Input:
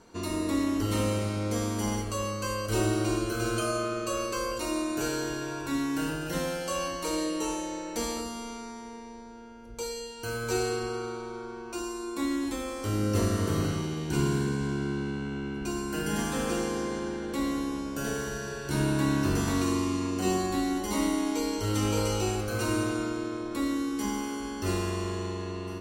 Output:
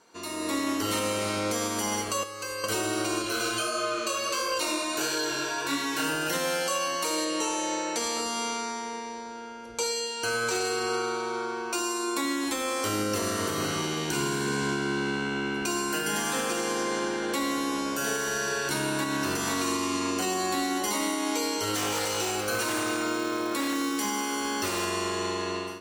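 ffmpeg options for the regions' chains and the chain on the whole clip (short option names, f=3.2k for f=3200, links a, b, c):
-filter_complex "[0:a]asettb=1/sr,asplit=3[a][b][c];[a]atrim=end=2.234[d];[b]atrim=start=2.23:end=2.64,asetpts=PTS-STARTPTS,afade=t=in:d=0.004:c=qsin,afade=t=out:st=0.406:d=0.004:c=qsin,acrossover=split=970|5500[e][f][g];[e]acompressor=threshold=-44dB:ratio=4[h];[f]acompressor=threshold=-49dB:ratio=4[i];[g]acompressor=threshold=-58dB:ratio=4[j];[h][i][j]amix=inputs=3:normalize=0,aecho=1:1:2.4:0.62,atrim=end_sample=18081[k];[c]atrim=start=2.636[l];[d][k]acrossfade=d=0.004:c1=hsin:c2=qsin[m];[m][l]acrossfade=d=0.004:c1=qsin:c2=hsin,asettb=1/sr,asplit=3[n][o][p];[n]atrim=end=3.224[q];[o]atrim=start=3.22:end=6.04,asetpts=PTS-STARTPTS,afade=t=in:d=0.004:c=qsin,afade=t=out:st=2.816:d=0.004:c=qsin,equalizer=f=3.7k:t=o:w=1.1:g=4.5,flanger=delay=19:depth=5.7:speed=1.5[r];[p]atrim=start=6.036[s];[q][r]acrossfade=d=0.004:c1=hsin:c2=qsin[t];[t][s]acrossfade=d=0.004:c1=qsin:c2=hsin,asettb=1/sr,asplit=3[u][v][w];[u]atrim=end=7.254[x];[v]atrim=start=7.25:end=10.65,asetpts=PTS-STARTPTS,afade=t=in:d=0.004:c=qsin,afade=t=out:st=3.396:d=0.004:c=qsin,lowpass=9.8k,aeval=exprs='0.0891*(abs(mod(val(0)/0.0891+3,4)-2)-1)':c=same[y];[w]atrim=start=10.646[z];[x][y]acrossfade=d=0.004:c1=hsin:c2=qsin[aa];[aa][z]acrossfade=d=0.004:c1=qsin:c2=hsin,asettb=1/sr,asplit=3[ab][ac][ad];[ab]atrim=end=21.754[ae];[ac]atrim=start=21.75:end=24.85,asetpts=PTS-STARTPTS,afade=t=in:d=0.004:c=qsin,afade=t=out:st=3.096:d=0.004:c=qsin,acrusher=bits=7:mode=log:mix=0:aa=0.000001,aeval=exprs='0.0668*(abs(mod(val(0)/0.0668+3,4)-2)-1)':c=same[af];[ad]atrim=start=24.846[ag];[ae][af]acrossfade=d=0.004:c1=hsin:c2=qsin[ah];[ah][ag]acrossfade=d=0.004:c1=qsin:c2=hsin,highpass=f=770:p=1,dynaudnorm=f=360:g=3:m=12.5dB,alimiter=limit=-18.5dB:level=0:latency=1:release=351"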